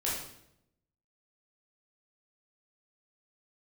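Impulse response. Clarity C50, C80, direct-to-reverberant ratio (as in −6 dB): 1.5 dB, 5.5 dB, −6.5 dB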